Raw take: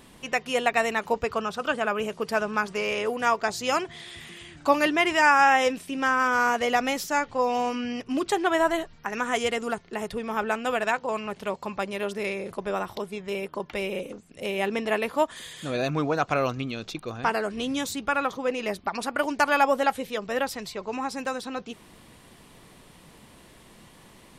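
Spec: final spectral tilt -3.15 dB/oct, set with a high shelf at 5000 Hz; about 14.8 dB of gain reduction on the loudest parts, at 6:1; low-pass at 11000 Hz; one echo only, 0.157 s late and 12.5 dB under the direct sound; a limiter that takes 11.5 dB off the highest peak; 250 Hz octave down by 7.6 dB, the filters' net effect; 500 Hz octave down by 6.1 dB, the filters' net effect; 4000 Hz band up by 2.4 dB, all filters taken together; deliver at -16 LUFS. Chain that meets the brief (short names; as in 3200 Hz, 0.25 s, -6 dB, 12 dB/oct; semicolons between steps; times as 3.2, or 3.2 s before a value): LPF 11000 Hz; bell 250 Hz -7.5 dB; bell 500 Hz -6 dB; bell 4000 Hz +5 dB; high shelf 5000 Hz -3 dB; compressor 6:1, threshold -32 dBFS; limiter -29 dBFS; echo 0.157 s -12.5 dB; gain +23 dB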